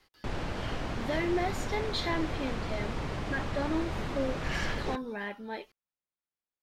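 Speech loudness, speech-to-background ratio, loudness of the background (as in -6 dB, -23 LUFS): -35.5 LUFS, 1.0 dB, -36.5 LUFS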